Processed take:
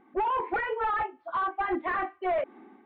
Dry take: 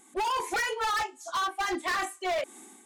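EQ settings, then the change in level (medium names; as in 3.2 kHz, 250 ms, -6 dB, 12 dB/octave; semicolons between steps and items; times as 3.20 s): Gaussian low-pass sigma 4.3 samples; +3.0 dB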